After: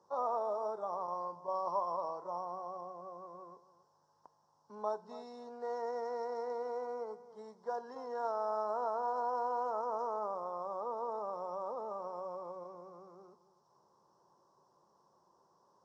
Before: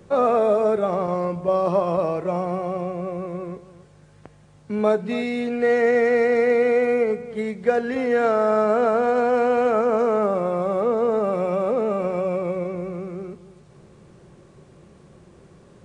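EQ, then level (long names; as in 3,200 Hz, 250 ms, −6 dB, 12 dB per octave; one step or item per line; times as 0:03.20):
pair of resonant band-passes 2,300 Hz, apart 2.5 octaves
high-shelf EQ 2,100 Hz −9 dB
0.0 dB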